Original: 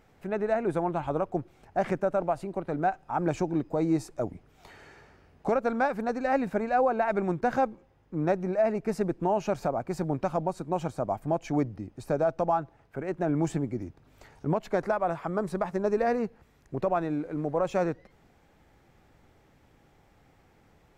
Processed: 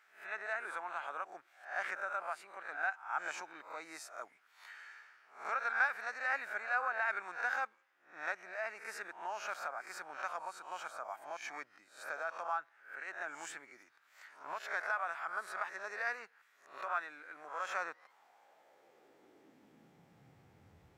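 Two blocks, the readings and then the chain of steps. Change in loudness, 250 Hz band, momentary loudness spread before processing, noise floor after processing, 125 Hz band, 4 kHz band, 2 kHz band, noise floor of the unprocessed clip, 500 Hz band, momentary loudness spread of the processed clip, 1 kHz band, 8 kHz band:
-10.0 dB, -33.0 dB, 8 LU, -69 dBFS, under -35 dB, no reading, +3.0 dB, -62 dBFS, -20.0 dB, 16 LU, -9.0 dB, -3.0 dB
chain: reverse spectral sustain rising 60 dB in 0.42 s; high-pass sweep 1.5 kHz -> 82 Hz, 17.66–20.80 s; trim -6 dB

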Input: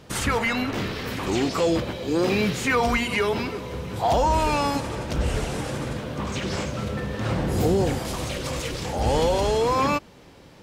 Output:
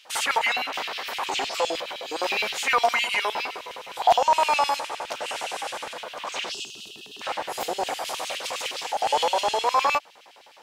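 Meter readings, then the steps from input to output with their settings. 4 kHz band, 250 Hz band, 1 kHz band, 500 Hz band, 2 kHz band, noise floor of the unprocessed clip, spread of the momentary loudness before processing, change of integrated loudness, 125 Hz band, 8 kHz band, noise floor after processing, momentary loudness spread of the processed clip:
+4.0 dB, -18.5 dB, +3.0 dB, -5.0 dB, +1.5 dB, -48 dBFS, 8 LU, -1.0 dB, under -25 dB, +0.5 dB, -51 dBFS, 12 LU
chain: time-frequency box 6.52–7.22 s, 450–2500 Hz -29 dB; LFO high-pass square 9.7 Hz 770–2800 Hz

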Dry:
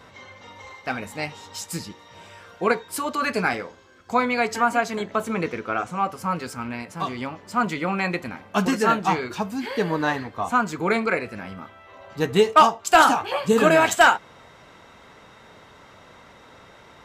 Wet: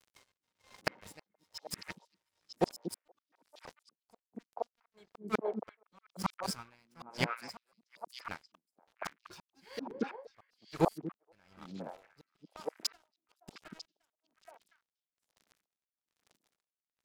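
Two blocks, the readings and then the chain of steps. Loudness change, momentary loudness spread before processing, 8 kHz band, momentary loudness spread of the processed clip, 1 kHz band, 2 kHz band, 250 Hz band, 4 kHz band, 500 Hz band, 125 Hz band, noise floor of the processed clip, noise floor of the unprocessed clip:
-17.5 dB, 16 LU, -15.5 dB, 20 LU, -22.0 dB, -22.5 dB, -16.0 dB, -14.5 dB, -18.0 dB, -13.5 dB, under -85 dBFS, -50 dBFS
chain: graphic EQ with 31 bands 250 Hz -11 dB, 5 kHz +12 dB, 10 kHz +4 dB; inverted gate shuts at -17 dBFS, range -29 dB; crossover distortion -40 dBFS; on a send: repeats whose band climbs or falls 237 ms, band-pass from 240 Hz, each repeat 1.4 oct, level 0 dB; on the sum: logarithmic tremolo 1.1 Hz, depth 36 dB; trim +6.5 dB

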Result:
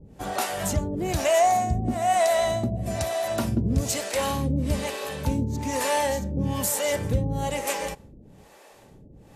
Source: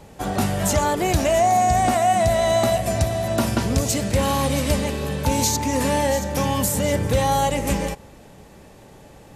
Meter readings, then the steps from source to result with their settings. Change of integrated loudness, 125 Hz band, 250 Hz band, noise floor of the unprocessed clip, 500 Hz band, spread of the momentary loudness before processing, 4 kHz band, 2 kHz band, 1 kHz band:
-5.0 dB, -4.5 dB, -5.0 dB, -46 dBFS, -4.5 dB, 5 LU, -5.0 dB, -4.0 dB, -5.5 dB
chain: harmonic tremolo 1.1 Hz, depth 100%, crossover 410 Hz

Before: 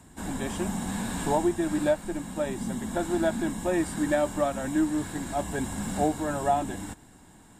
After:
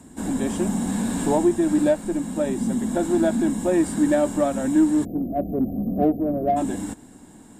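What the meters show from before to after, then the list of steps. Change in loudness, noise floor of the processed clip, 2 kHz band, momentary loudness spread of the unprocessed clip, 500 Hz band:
+6.0 dB, -46 dBFS, -1.0 dB, 7 LU, +5.0 dB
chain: spectral selection erased 5.05–6.57 s, 760–12000 Hz; ten-band graphic EQ 250 Hz +10 dB, 500 Hz +5 dB, 8 kHz +5 dB; in parallel at -10 dB: saturation -22.5 dBFS, distortion -8 dB; on the sum: trim -2 dB

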